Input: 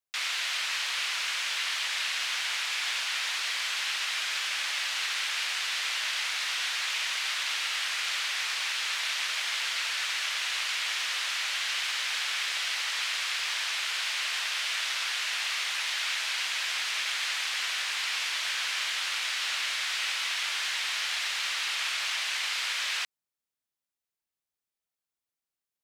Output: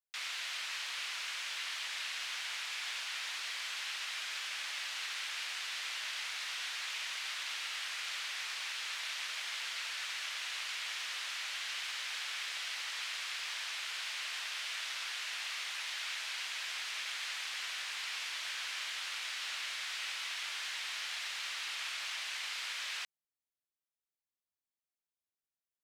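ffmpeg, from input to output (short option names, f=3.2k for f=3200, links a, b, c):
-af "volume=-9dB"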